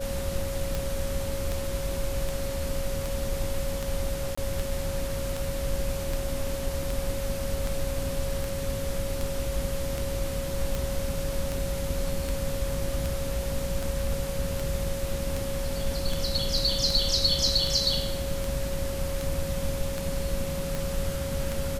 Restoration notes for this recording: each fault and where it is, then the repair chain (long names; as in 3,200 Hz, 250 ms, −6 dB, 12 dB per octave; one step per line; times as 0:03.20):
scratch tick 78 rpm
whistle 550 Hz −33 dBFS
0:04.35–0:04.38: drop-out 25 ms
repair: click removal
notch filter 550 Hz, Q 30
repair the gap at 0:04.35, 25 ms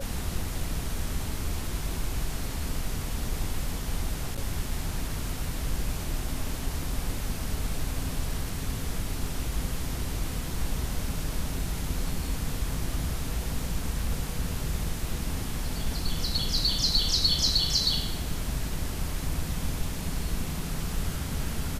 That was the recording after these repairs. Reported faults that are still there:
none of them is left